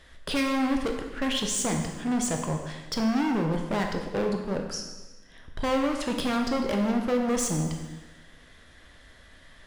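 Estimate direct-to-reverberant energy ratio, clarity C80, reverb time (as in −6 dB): 2.5 dB, 6.5 dB, 1.2 s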